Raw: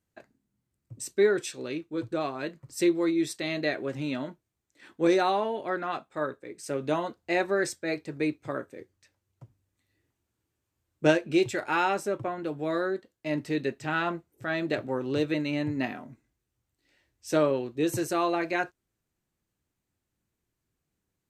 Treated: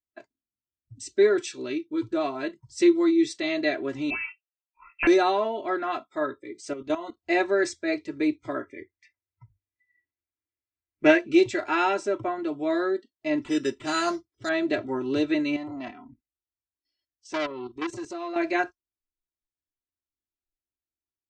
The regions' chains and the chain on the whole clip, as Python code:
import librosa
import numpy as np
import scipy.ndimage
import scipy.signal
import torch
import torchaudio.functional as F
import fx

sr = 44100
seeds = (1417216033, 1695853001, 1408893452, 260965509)

y = fx.chain(x, sr, fx.overflow_wrap(gain_db=18.0),
    fx.low_shelf(hz=190.0, db=-11.5),
    fx.freq_invert(carrier_hz=2900), at=(4.1, 5.07))
y = fx.chain(y, sr, fx.high_shelf(hz=10000.0, db=4.0),
    fx.level_steps(step_db=13), at=(6.73, 7.17))
y = fx.chain(y, sr, fx.lowpass(hz=3500.0, slope=6),
    fx.peak_eq(hz=2100.0, db=12.5, octaves=0.59), at=(8.61, 11.19))
y = fx.chain(y, sr, fx.resample_bad(factor=8, down='none', up='hold'),
    fx.high_shelf(hz=12000.0, db=3.0), at=(13.42, 14.49))
y = fx.chain(y, sr, fx.level_steps(step_db=12),
    fx.transformer_sat(knee_hz=2000.0), at=(15.56, 18.36))
y = scipy.signal.sosfilt(scipy.signal.cheby2(4, 40, 12000.0, 'lowpass', fs=sr, output='sos'), y)
y = fx.noise_reduce_blind(y, sr, reduce_db=23)
y = y + 0.85 * np.pad(y, (int(3.0 * sr / 1000.0), 0))[:len(y)]